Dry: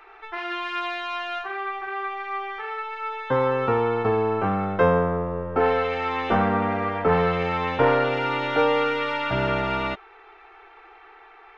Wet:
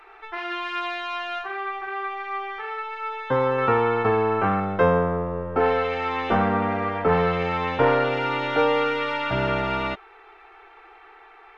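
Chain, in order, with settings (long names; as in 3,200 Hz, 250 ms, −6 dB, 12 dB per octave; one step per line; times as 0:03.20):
0:03.58–0:04.60: parametric band 1,700 Hz +5.5 dB 1.7 octaves
SBC 192 kbit/s 32,000 Hz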